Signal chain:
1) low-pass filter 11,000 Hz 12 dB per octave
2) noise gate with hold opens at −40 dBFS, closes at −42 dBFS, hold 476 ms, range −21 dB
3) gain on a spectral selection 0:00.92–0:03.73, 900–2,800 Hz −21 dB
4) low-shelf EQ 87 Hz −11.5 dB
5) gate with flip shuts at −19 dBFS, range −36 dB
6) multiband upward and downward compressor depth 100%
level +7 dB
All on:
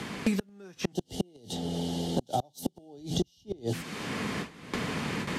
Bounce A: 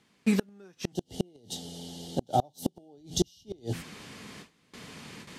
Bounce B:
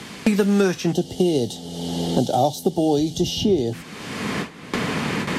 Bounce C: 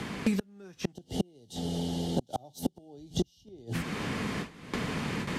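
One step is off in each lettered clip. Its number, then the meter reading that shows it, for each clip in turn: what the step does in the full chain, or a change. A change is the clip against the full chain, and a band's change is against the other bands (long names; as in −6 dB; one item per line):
6, change in crest factor +3.5 dB
5, change in momentary loudness spread +3 LU
4, 125 Hz band +2.0 dB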